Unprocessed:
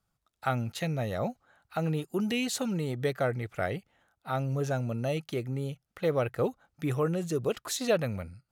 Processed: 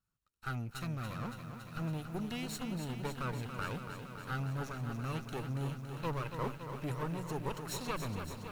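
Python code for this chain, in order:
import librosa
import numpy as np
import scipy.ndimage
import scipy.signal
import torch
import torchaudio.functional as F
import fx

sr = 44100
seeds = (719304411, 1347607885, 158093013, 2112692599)

y = fx.lower_of_two(x, sr, delay_ms=0.72)
y = fx.rider(y, sr, range_db=10, speed_s=0.5)
y = fx.echo_crushed(y, sr, ms=281, feedback_pct=80, bits=9, wet_db=-8)
y = y * librosa.db_to_amplitude(-7.0)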